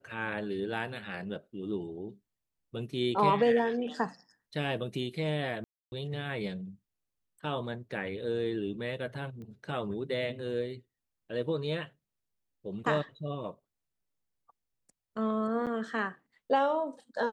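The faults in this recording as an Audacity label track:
5.640000	5.920000	gap 0.281 s
9.420000	9.420000	pop -36 dBFS
15.660000	15.670000	gap 7.7 ms

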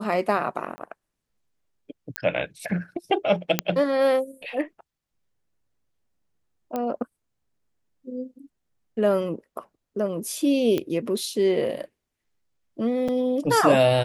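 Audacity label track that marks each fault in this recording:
0.760000	0.780000	gap 20 ms
2.160000	2.160000	pop -8 dBFS
3.590000	3.590000	pop -3 dBFS
6.760000	6.760000	pop -15 dBFS
10.780000	10.780000	pop -13 dBFS
13.080000	13.090000	gap 5.1 ms

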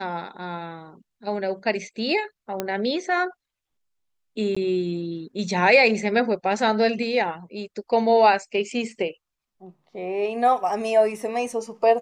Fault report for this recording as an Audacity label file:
2.600000	2.600000	pop -11 dBFS
4.550000	4.570000	gap 15 ms

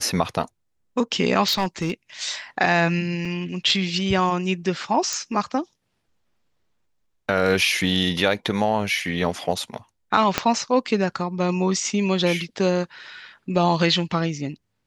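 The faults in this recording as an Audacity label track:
1.470000	1.920000	clipped -17.5 dBFS
3.250000	3.250000	gap 3.3 ms
5.130000	5.130000	pop -12 dBFS
10.380000	10.380000	pop -3 dBFS

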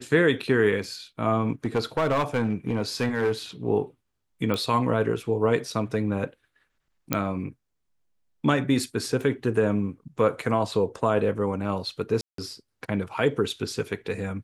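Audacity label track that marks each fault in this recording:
1.650000	3.320000	clipped -19 dBFS
4.540000	4.540000	pop -14 dBFS
7.130000	7.130000	pop -6 dBFS
9.220000	9.220000	gap 2.5 ms
12.210000	12.380000	gap 0.173 s

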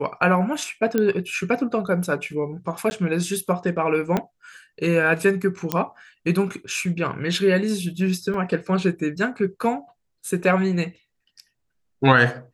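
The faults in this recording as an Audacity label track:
0.980000	0.980000	pop -9 dBFS
2.900000	2.910000	gap 10 ms
4.170000	4.170000	pop -9 dBFS
5.720000	5.720000	pop -6 dBFS
8.340000	8.340000	gap 2.8 ms

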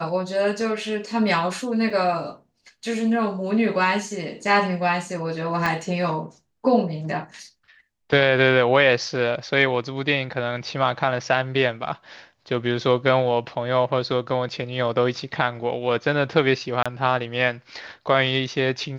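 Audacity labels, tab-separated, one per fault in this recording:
1.900000	1.900000	gap 4 ms
5.660000	5.660000	pop -11 dBFS
16.830000	16.860000	gap 26 ms

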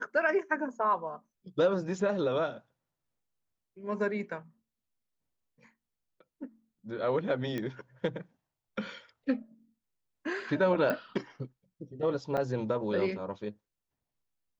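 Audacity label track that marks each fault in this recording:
7.580000	7.580000	pop -22 dBFS
10.900000	10.900000	pop -18 dBFS
12.370000	12.380000	gap 6.9 ms

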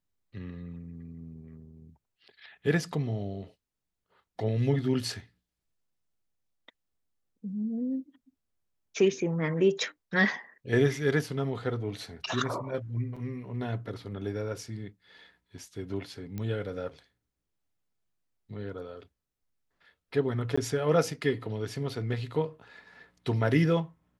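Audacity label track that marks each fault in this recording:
13.160000	13.170000	gap 5.1 ms
16.380000	16.380000	pop -23 dBFS
20.560000	20.570000	gap 15 ms

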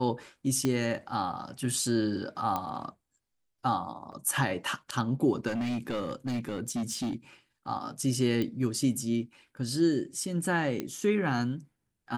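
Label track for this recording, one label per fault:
0.650000	0.650000	pop -15 dBFS
2.560000	2.560000	pop -17 dBFS
4.120000	4.130000	gap 7.1 ms
5.470000	7.130000	clipped -28 dBFS
8.420000	8.420000	pop -19 dBFS
10.800000	10.800000	pop -18 dBFS

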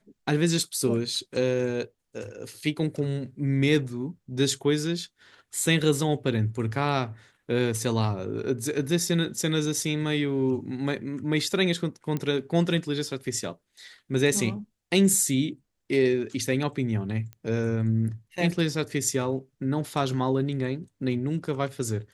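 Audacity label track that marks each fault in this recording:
12.170000	12.170000	pop -17 dBFS
17.330000	17.330000	pop -26 dBFS

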